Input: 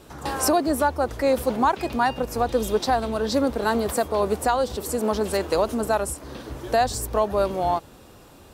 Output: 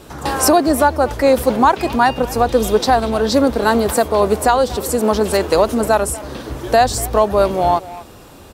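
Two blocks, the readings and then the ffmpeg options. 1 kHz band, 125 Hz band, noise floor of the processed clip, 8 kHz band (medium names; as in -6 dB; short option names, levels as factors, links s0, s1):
+8.0 dB, +8.0 dB, -40 dBFS, +8.0 dB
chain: -filter_complex "[0:a]asplit=2[s0][s1];[s1]adelay=240,highpass=300,lowpass=3400,asoftclip=type=hard:threshold=0.112,volume=0.158[s2];[s0][s2]amix=inputs=2:normalize=0,volume=2.51"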